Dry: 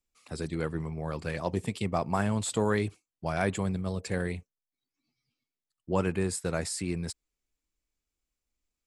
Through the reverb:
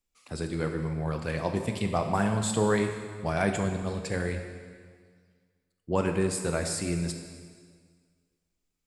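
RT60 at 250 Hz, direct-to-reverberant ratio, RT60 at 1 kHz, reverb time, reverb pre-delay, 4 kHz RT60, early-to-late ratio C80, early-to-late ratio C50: 1.8 s, 5.0 dB, 1.8 s, 1.8 s, 7 ms, 1.7 s, 7.5 dB, 6.5 dB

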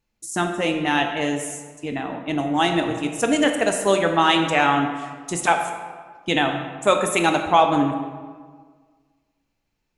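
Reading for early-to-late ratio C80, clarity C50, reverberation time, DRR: 7.5 dB, 6.0 dB, 1.6 s, 4.5 dB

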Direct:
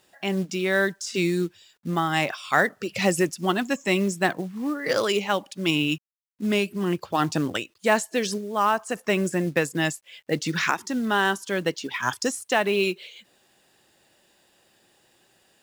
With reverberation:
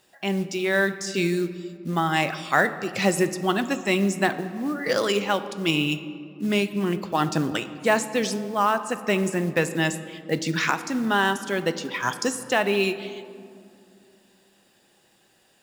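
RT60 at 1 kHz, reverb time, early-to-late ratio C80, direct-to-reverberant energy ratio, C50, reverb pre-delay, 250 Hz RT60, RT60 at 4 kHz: 2.2 s, 2.4 s, 13.5 dB, 10.0 dB, 12.5 dB, 4 ms, 3.5 s, 1.2 s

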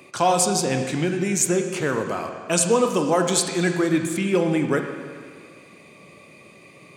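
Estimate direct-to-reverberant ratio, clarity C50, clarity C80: 4.5 dB, 6.0 dB, 7.0 dB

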